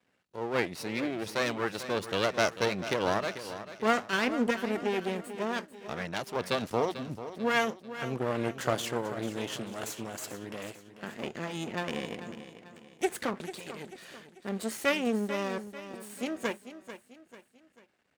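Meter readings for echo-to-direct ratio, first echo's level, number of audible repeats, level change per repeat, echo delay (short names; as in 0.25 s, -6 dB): -11.5 dB, -12.5 dB, 3, -7.5 dB, 0.442 s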